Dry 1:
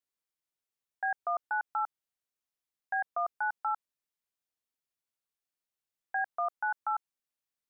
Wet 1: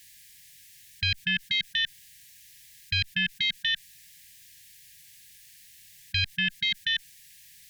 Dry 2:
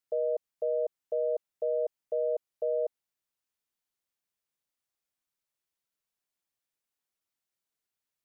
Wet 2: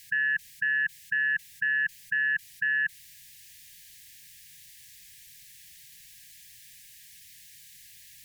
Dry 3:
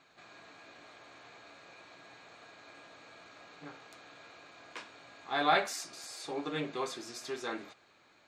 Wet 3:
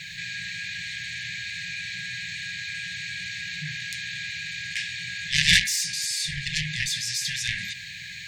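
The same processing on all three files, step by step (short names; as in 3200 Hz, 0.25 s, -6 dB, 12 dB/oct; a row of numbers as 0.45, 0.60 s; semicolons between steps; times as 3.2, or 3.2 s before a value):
added harmonics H 7 -14 dB, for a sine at -13 dBFS; brick-wall FIR band-stop 190–1600 Hz; fast leveller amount 50%; match loudness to -27 LUFS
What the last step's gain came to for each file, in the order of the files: +18.5, +20.0, +14.0 dB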